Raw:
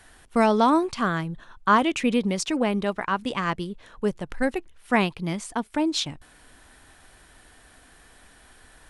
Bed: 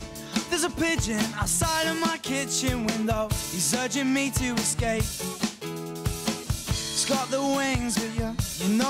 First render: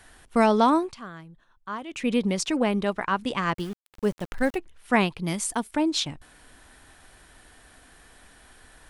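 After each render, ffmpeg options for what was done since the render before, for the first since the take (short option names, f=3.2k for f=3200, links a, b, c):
-filter_complex "[0:a]asettb=1/sr,asplit=3[a][b][c];[a]atrim=end=3.544[d];[b]atrim=start=3.54:end=4.56,asetpts=PTS-STARTPTS,afade=t=in:d=0.004:c=qsin,afade=t=out:st=1.016:d=0.004:c=qsin,aeval=exprs='val(0)*gte(abs(val(0)),0.0112)':c=same[e];[c]atrim=start=4.556[f];[d][e]acrossfade=d=0.004:c1=hsin:c2=qsin[g];[g][f]acrossfade=d=0.004:c1=qsin:c2=hsin,asettb=1/sr,asplit=3[h][i][j];[h]atrim=end=5.274[k];[i]atrim=start=5.27:end=5.71,asetpts=PTS-STARTPTS,afade=t=in:d=0.004:c=qsin,afade=t=out:st=0.436:d=0.004:c=qsin,aemphasis=mode=production:type=50fm[l];[j]atrim=start=5.706[m];[k][l]acrossfade=d=0.004:c1=hsin:c2=qsin[n];[n][m]acrossfade=d=0.004:c1=qsin:c2=hsin,asplit=3[o][p][q];[o]atrim=end=1,asetpts=PTS-STARTPTS,afade=t=out:st=0.59:d=0.41:c=qsin:silence=0.16788[r];[p]atrim=start=1:end=1.88,asetpts=PTS-STARTPTS,volume=-15.5dB[s];[q]atrim=start=1.88,asetpts=PTS-STARTPTS,afade=t=in:d=0.41:c=qsin:silence=0.16788[t];[r][s][t]concat=n=3:v=0:a=1"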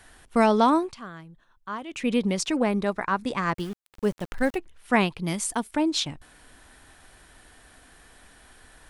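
-filter_complex "[0:a]asettb=1/sr,asplit=3[a][b][c];[a]atrim=end=2.624[d];[b]atrim=start=2.62:end=3.55,asetpts=PTS-STARTPTS,afade=t=in:d=0.004:c=qsin,afade=t=out:st=0.926:d=0.004:c=qsin,equalizer=f=3k:w=6.5:g=-10.5[e];[c]atrim=start=3.546[f];[d][e]acrossfade=d=0.004:c1=hsin:c2=qsin[g];[g][f]acrossfade=d=0.004:c1=qsin:c2=hsin"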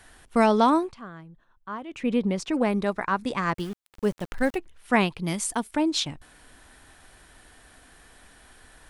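-filter_complex "[0:a]asplit=3[a][b][c];[a]afade=t=out:st=0.88:d=0.02[d];[b]highshelf=f=2.7k:g=-10.5,afade=t=in:st=0.88:d=0.02,afade=t=out:st=2.53:d=0.02[e];[c]afade=t=in:st=2.53:d=0.02[f];[d][e][f]amix=inputs=3:normalize=0"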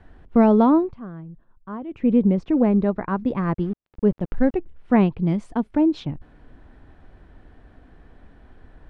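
-af "lowpass=3k,tiltshelf=f=760:g=9.5"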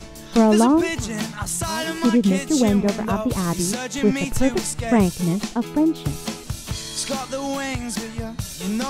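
-filter_complex "[1:a]volume=-1dB[a];[0:a][a]amix=inputs=2:normalize=0"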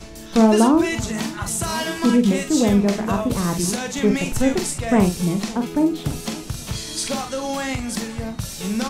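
-filter_complex "[0:a]asplit=2[a][b];[b]adelay=45,volume=-7dB[c];[a][c]amix=inputs=2:normalize=0,aecho=1:1:557|1114|1671|2228:0.1|0.053|0.0281|0.0149"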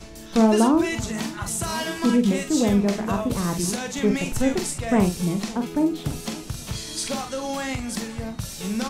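-af "volume=-3dB"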